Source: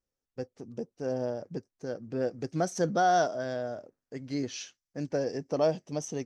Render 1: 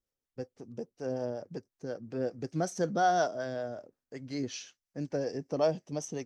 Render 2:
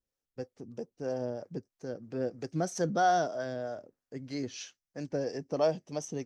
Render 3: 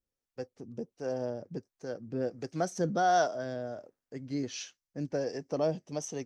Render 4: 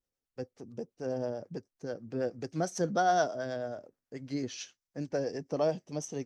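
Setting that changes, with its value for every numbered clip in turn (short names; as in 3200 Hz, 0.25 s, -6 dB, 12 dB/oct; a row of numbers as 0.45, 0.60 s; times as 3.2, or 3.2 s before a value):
harmonic tremolo, rate: 5.4, 3.1, 1.4, 9.2 Hz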